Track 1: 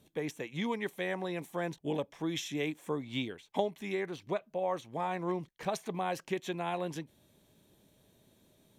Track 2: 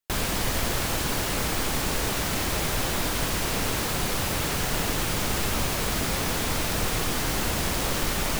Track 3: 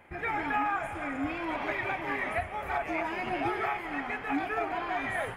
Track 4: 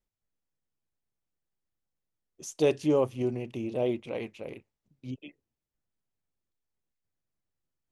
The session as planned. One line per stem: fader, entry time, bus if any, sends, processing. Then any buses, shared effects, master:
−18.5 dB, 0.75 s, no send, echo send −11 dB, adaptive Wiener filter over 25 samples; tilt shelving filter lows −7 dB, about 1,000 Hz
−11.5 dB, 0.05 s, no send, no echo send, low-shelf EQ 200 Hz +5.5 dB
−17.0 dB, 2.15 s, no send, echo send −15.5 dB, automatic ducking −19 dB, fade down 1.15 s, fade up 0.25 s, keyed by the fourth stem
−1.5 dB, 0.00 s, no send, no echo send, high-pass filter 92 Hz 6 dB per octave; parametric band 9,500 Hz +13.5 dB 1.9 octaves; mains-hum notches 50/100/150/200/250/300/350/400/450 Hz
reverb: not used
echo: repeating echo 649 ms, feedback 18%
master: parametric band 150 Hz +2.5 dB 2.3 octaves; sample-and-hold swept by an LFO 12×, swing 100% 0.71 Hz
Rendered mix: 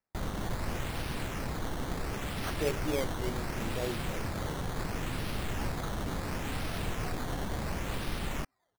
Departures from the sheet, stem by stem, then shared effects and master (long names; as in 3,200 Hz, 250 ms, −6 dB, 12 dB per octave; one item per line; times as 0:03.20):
stem 1 −18.5 dB → −30.0 dB
stem 4 −1.5 dB → −8.5 dB